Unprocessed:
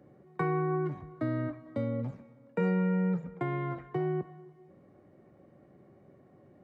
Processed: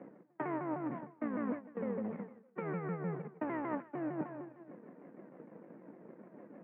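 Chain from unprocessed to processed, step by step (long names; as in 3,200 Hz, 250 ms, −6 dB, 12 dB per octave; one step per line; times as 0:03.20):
pitch shifter swept by a sawtooth −4.5 semitones, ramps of 152 ms
reversed playback
downward compressor 6 to 1, threshold −46 dBFS, peak gain reduction 18.5 dB
reversed playback
power curve on the samples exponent 1.4
elliptic band-pass filter 190–2,300 Hz, stop band 40 dB
level +15.5 dB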